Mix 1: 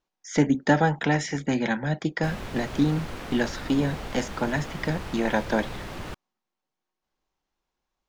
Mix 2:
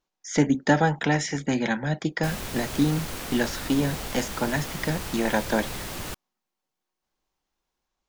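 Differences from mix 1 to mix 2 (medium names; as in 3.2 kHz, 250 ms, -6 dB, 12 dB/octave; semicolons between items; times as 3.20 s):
background: add treble shelf 4.8 kHz +11.5 dB; master: add treble shelf 6.2 kHz +7 dB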